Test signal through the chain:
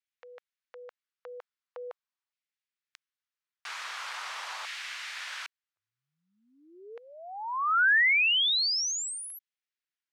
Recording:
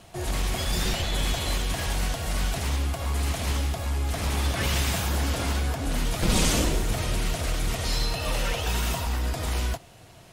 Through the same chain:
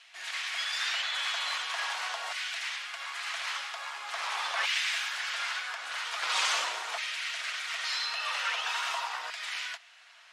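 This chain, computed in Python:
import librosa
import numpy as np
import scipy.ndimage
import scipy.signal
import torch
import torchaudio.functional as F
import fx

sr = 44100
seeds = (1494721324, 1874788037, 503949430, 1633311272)

y = fx.filter_lfo_highpass(x, sr, shape='saw_down', hz=0.43, low_hz=940.0, high_hz=2000.0, q=1.5)
y = fx.bandpass_edges(y, sr, low_hz=620.0, high_hz=5000.0)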